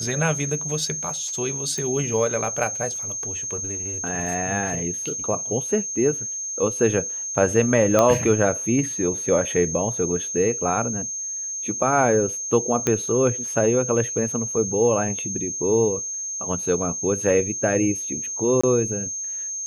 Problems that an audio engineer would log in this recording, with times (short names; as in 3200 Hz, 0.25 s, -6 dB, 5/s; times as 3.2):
tone 6400 Hz -27 dBFS
1.78 pop -16 dBFS
7.99 pop -5 dBFS
12.87 pop -7 dBFS
18.61–18.64 gap 25 ms